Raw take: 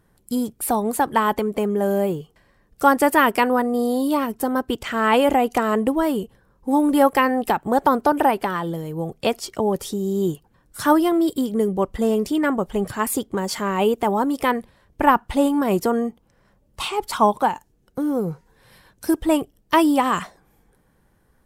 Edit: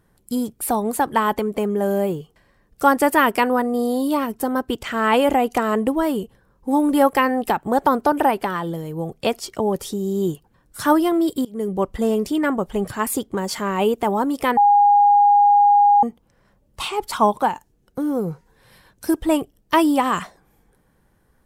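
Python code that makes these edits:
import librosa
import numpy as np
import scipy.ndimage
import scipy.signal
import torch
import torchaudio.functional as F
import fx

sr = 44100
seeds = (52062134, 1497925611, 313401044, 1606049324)

y = fx.edit(x, sr, fx.fade_in_from(start_s=11.45, length_s=0.32, floor_db=-21.0),
    fx.bleep(start_s=14.57, length_s=1.46, hz=818.0, db=-10.0), tone=tone)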